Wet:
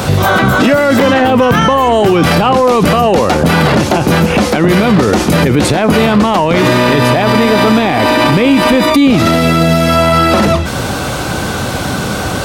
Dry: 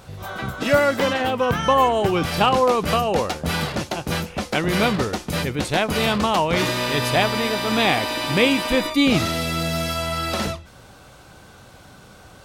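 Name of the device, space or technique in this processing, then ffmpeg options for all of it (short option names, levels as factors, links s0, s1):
mastering chain: -filter_complex "[0:a]highpass=53,equalizer=f=260:t=o:w=1.2:g=4,acrossover=split=100|2200[s0][s1][s2];[s0]acompressor=threshold=0.00708:ratio=4[s3];[s1]acompressor=threshold=0.0708:ratio=4[s4];[s2]acompressor=threshold=0.00891:ratio=4[s5];[s3][s4][s5]amix=inputs=3:normalize=0,acompressor=threshold=0.0447:ratio=2,asoftclip=type=tanh:threshold=0.126,alimiter=level_in=29.9:limit=0.891:release=50:level=0:latency=1,volume=0.891"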